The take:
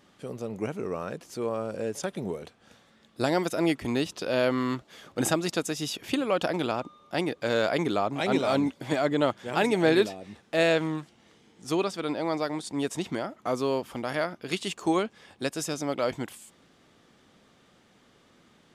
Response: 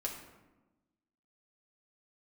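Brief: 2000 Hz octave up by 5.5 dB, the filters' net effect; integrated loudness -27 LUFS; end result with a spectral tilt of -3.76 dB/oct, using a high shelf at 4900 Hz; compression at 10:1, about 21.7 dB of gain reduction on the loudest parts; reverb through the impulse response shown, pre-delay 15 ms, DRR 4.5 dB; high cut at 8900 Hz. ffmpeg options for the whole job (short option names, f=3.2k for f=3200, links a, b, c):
-filter_complex "[0:a]lowpass=8.9k,equalizer=f=2k:t=o:g=6,highshelf=f=4.9k:g=7,acompressor=threshold=-39dB:ratio=10,asplit=2[a][b];[1:a]atrim=start_sample=2205,adelay=15[c];[b][c]afir=irnorm=-1:irlink=0,volume=-5.5dB[d];[a][d]amix=inputs=2:normalize=0,volume=15dB"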